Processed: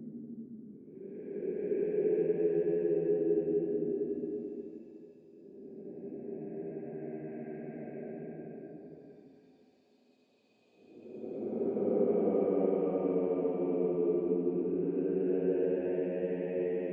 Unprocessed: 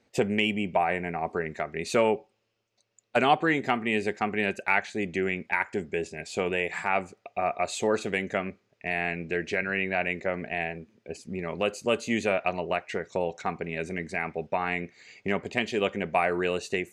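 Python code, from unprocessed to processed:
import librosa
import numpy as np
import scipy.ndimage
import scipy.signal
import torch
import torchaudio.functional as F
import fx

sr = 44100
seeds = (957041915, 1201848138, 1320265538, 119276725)

y = fx.block_float(x, sr, bits=5)
y = fx.ladder_bandpass(y, sr, hz=320.0, resonance_pct=50)
y = fx.low_shelf(y, sr, hz=250.0, db=7.0)
y = fx.paulstretch(y, sr, seeds[0], factor=23.0, window_s=0.1, from_s=5.86)
y = y * librosa.db_to_amplitude(6.5)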